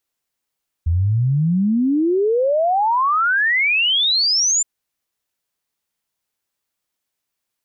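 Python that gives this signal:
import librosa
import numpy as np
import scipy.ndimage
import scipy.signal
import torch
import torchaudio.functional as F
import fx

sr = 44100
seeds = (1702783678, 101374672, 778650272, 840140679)

y = fx.ess(sr, length_s=3.77, from_hz=79.0, to_hz=7300.0, level_db=-14.0)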